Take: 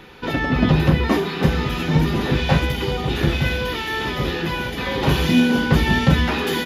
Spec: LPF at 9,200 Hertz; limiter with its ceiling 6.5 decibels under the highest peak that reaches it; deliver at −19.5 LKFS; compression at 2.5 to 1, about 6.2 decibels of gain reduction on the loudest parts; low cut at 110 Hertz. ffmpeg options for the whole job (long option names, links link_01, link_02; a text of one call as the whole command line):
ffmpeg -i in.wav -af "highpass=110,lowpass=9200,acompressor=threshold=-21dB:ratio=2.5,volume=5.5dB,alimiter=limit=-10dB:level=0:latency=1" out.wav